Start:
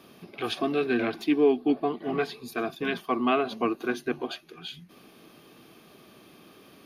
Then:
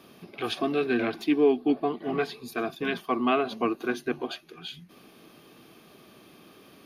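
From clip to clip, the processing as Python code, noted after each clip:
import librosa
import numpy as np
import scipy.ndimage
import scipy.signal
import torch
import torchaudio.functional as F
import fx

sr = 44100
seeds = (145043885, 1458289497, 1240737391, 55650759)

y = x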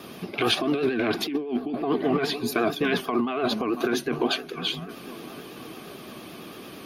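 y = fx.echo_wet_lowpass(x, sr, ms=499, feedback_pct=67, hz=1800.0, wet_db=-24)
y = fx.vibrato(y, sr, rate_hz=8.9, depth_cents=78.0)
y = fx.over_compress(y, sr, threshold_db=-31.0, ratio=-1.0)
y = y * librosa.db_to_amplitude(6.5)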